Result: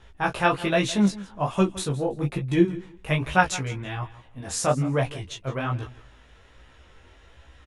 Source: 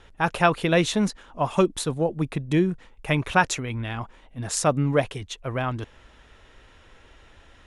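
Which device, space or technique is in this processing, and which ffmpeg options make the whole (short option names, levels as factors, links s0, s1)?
double-tracked vocal: -filter_complex "[0:a]asplit=2[s0][s1];[s1]adelay=15,volume=0.631[s2];[s0][s2]amix=inputs=2:normalize=0,flanger=delay=16:depth=7.3:speed=1.2,asettb=1/sr,asplit=3[s3][s4][s5];[s3]atrim=end=2.224[s6];[s4]atrim=start=2.22:end=2.65,asetpts=PTS-STARTPTS,afade=t=in:d=0.004:c=qsin,afade=t=out:st=0.426:d=0.004:c=qsin,aecho=1:1:5.7:0.53,atrim=end_sample=18963[s7];[s5]atrim=start=2.646[s8];[s6][s7]acrossfade=d=0.004:c1=hsin:c2=qsin[s9];[s9][s8]acrossfade=d=0.004:c1=qsin:c2=hsin,equalizer=f=79:w=1.5:g=6,aecho=1:1:164|328:0.126|0.0252"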